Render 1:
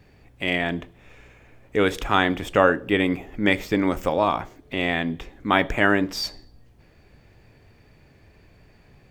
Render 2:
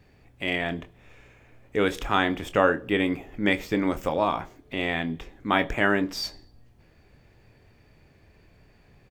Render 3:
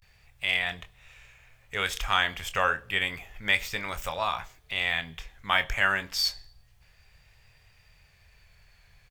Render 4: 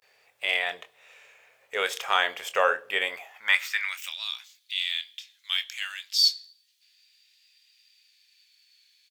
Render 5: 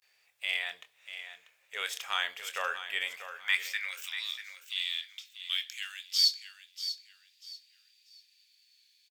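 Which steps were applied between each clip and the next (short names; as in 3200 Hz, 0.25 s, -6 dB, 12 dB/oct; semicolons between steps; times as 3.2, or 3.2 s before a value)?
doubler 25 ms -12 dB; gain -3.5 dB
vibrato 0.3 Hz 60 cents; passive tone stack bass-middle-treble 10-0-10; gain +6.5 dB
high-pass sweep 470 Hz -> 3800 Hz, 3.03–4.25
passive tone stack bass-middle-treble 5-5-5; feedback echo 0.64 s, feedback 28%, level -11 dB; gain +3 dB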